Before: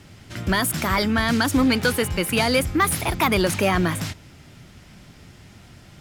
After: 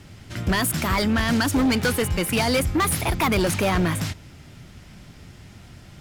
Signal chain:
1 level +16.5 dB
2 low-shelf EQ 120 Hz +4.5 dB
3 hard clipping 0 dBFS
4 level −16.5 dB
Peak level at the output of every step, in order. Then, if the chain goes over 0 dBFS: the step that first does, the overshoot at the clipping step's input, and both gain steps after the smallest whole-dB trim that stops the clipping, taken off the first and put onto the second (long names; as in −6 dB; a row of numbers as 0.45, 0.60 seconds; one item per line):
+7.5, +8.5, 0.0, −16.5 dBFS
step 1, 8.5 dB
step 1 +7.5 dB, step 4 −7.5 dB